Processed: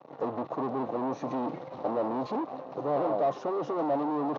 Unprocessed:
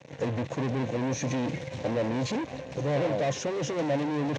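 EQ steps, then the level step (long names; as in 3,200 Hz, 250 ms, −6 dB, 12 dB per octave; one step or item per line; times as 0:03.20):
loudspeaker in its box 390–4,200 Hz, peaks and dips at 550 Hz −3 dB, 1,000 Hz −8 dB, 1,600 Hz −9 dB, 3,300 Hz −3 dB
parametric band 510 Hz −6 dB 0.43 octaves
high shelf with overshoot 1,600 Hz −12 dB, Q 3
+5.0 dB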